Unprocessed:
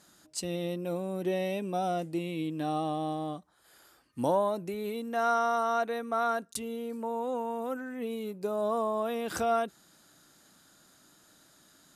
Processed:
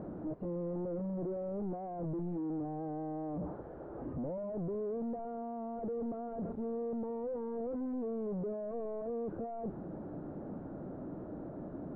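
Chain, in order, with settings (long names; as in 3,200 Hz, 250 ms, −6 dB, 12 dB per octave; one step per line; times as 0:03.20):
sign of each sample alone
transistor ladder low-pass 720 Hz, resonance 20%
level +1.5 dB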